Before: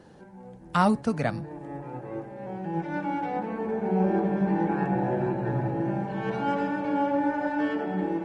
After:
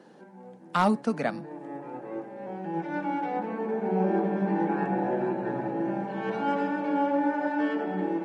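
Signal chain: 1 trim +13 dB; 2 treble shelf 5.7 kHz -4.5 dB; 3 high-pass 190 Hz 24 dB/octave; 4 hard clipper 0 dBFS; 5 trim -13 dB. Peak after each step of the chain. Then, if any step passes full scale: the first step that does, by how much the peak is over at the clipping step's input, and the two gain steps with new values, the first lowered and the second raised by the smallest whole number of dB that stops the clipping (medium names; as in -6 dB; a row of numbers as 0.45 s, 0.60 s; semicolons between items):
+3.5 dBFS, +3.5 dBFS, +5.0 dBFS, 0.0 dBFS, -13.0 dBFS; step 1, 5.0 dB; step 1 +8 dB, step 5 -8 dB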